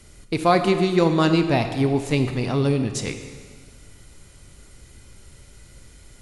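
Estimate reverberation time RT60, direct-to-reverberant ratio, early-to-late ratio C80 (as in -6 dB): 1.7 s, 7.0 dB, 9.5 dB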